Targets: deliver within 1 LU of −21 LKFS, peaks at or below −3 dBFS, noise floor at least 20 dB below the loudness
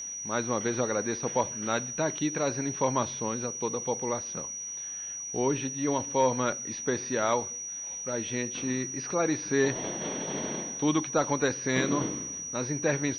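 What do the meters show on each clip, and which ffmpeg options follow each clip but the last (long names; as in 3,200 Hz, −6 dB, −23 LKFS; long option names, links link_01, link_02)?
interfering tone 5,800 Hz; level of the tone −35 dBFS; integrated loudness −29.5 LKFS; sample peak −13.5 dBFS; target loudness −21.0 LKFS
→ -af "bandreject=frequency=5800:width=30"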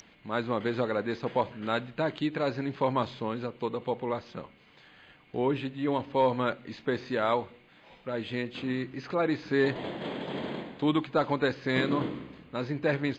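interfering tone none found; integrated loudness −30.5 LKFS; sample peak −14.0 dBFS; target loudness −21.0 LKFS
→ -af "volume=9.5dB"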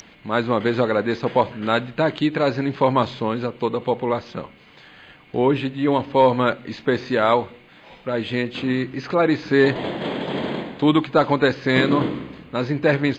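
integrated loudness −21.0 LKFS; sample peak −4.5 dBFS; background noise floor −49 dBFS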